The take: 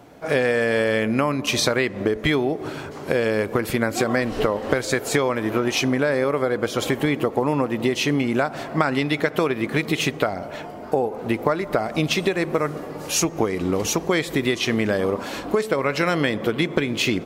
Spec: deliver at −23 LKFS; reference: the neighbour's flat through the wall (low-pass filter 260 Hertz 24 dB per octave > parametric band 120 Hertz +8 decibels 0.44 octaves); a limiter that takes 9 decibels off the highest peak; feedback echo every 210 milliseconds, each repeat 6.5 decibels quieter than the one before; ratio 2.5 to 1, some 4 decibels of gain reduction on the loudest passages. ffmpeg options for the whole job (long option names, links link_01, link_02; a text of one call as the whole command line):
ffmpeg -i in.wav -af "acompressor=threshold=-22dB:ratio=2.5,alimiter=limit=-16dB:level=0:latency=1,lowpass=frequency=260:width=0.5412,lowpass=frequency=260:width=1.3066,equalizer=frequency=120:width_type=o:width=0.44:gain=8,aecho=1:1:210|420|630|840|1050|1260:0.473|0.222|0.105|0.0491|0.0231|0.0109,volume=8.5dB" out.wav